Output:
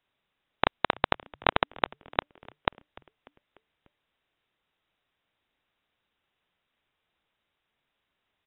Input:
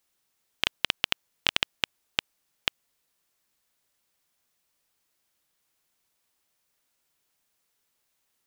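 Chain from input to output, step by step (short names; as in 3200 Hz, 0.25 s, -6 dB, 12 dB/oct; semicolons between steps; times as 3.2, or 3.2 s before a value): inverted band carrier 3800 Hz; frequency-shifting echo 0.296 s, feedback 54%, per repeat -150 Hz, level -23 dB; gain +2 dB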